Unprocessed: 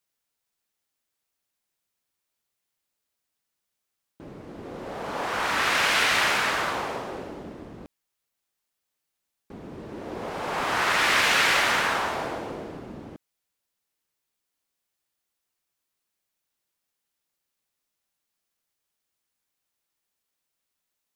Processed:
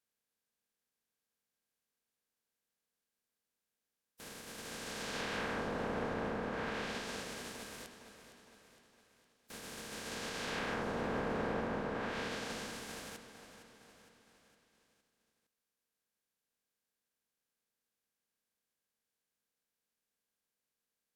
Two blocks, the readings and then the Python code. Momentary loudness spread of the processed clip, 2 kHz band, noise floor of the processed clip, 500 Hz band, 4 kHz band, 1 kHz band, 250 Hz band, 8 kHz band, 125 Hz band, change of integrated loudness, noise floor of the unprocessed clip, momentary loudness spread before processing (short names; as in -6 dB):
17 LU, -17.5 dB, under -85 dBFS, -7.5 dB, -17.5 dB, -15.0 dB, -4.5 dB, -13.5 dB, -4.5 dB, -16.5 dB, -82 dBFS, 22 LU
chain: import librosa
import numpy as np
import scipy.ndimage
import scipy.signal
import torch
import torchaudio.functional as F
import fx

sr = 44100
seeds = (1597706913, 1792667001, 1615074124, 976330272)

p1 = fx.spec_flatten(x, sr, power=0.16)
p2 = fx.small_body(p1, sr, hz=(220.0, 460.0, 1600.0), ring_ms=40, db=9)
p3 = fx.env_lowpass_down(p2, sr, base_hz=910.0, full_db=-20.0)
p4 = p3 + fx.echo_feedback(p3, sr, ms=461, feedback_pct=53, wet_db=-12.5, dry=0)
y = p4 * librosa.db_to_amplitude(-7.0)